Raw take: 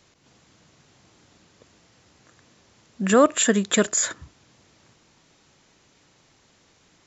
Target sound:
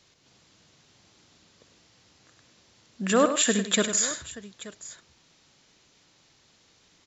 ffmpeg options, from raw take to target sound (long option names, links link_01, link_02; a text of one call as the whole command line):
ffmpeg -i in.wav -filter_complex "[0:a]equalizer=frequency=4200:width_type=o:width=1.5:gain=6.5,asplit=2[link_01][link_02];[link_02]aecho=0:1:64|101|158|879:0.188|0.335|0.112|0.133[link_03];[link_01][link_03]amix=inputs=2:normalize=0,volume=-5.5dB" out.wav